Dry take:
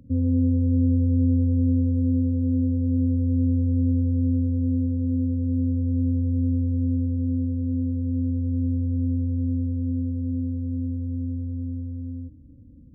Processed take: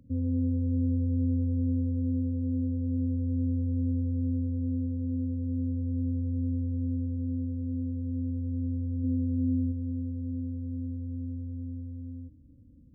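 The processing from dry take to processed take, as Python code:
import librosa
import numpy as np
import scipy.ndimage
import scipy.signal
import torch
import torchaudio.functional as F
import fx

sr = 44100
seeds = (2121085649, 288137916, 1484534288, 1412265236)

y = fx.peak_eq(x, sr, hz=fx.line((9.03, 410.0), (9.71, 190.0)), db=7.0, octaves=1.9, at=(9.03, 9.71), fade=0.02)
y = F.gain(torch.from_numpy(y), -7.0).numpy()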